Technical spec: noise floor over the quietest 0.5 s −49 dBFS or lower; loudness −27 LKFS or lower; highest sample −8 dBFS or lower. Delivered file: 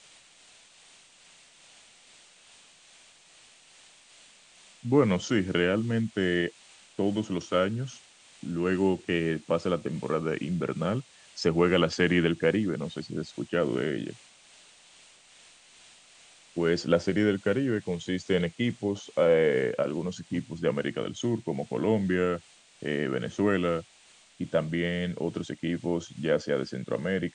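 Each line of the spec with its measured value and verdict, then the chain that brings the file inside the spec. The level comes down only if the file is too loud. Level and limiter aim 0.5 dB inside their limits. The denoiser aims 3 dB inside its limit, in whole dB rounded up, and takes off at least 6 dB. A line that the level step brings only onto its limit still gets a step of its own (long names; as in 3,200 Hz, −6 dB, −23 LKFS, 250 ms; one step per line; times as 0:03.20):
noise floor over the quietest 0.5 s −58 dBFS: in spec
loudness −28.5 LKFS: in spec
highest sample −9.0 dBFS: in spec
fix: no processing needed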